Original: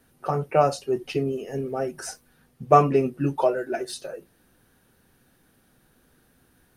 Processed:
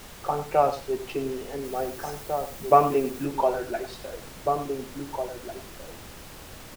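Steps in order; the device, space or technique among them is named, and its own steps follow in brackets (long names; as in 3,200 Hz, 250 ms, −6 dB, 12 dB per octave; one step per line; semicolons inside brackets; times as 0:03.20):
horn gramophone (band-pass filter 200–3,900 Hz; parametric band 830 Hz +7 dB 0.4 octaves; tape wow and flutter; pink noise bed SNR 15 dB)
0:01.64–0:03.25: high-shelf EQ 11,000 Hz +9 dB
slap from a distant wall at 300 metres, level −6 dB
single-tap delay 96 ms −12 dB
level −3.5 dB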